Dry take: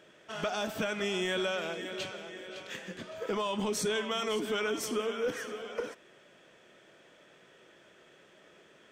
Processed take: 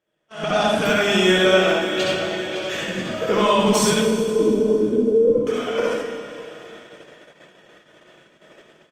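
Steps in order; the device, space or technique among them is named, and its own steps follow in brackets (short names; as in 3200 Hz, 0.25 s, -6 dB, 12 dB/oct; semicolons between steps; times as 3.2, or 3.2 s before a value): 1.38–1.82 gate with hold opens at -25 dBFS; 3.93–5.47 steep low-pass 570 Hz 96 dB/oct; narrowing echo 0.957 s, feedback 45%, band-pass 880 Hz, level -23 dB; Schroeder reverb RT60 2.4 s, combs from 29 ms, DRR 6 dB; speakerphone in a meeting room (reverb RT60 0.45 s, pre-delay 60 ms, DRR -2.5 dB; speakerphone echo 0.2 s, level -22 dB; AGC gain up to 12 dB; gate -39 dBFS, range -19 dB; gain -1 dB; Opus 32 kbps 48000 Hz)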